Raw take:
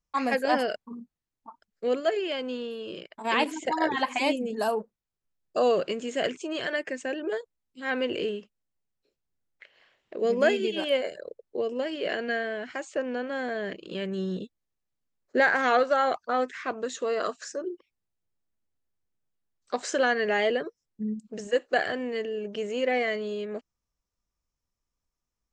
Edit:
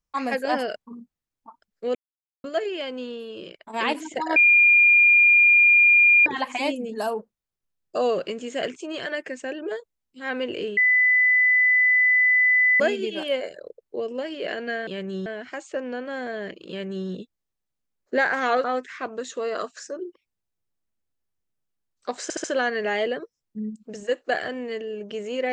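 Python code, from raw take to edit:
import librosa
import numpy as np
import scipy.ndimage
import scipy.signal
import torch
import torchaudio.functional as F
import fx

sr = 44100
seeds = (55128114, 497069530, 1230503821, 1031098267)

y = fx.edit(x, sr, fx.insert_silence(at_s=1.95, length_s=0.49),
    fx.insert_tone(at_s=3.87, length_s=1.9, hz=2410.0, db=-12.0),
    fx.bleep(start_s=8.38, length_s=2.03, hz=2000.0, db=-15.0),
    fx.duplicate(start_s=13.91, length_s=0.39, to_s=12.48),
    fx.cut(start_s=15.86, length_s=0.43),
    fx.stutter(start_s=19.88, slice_s=0.07, count=4), tone=tone)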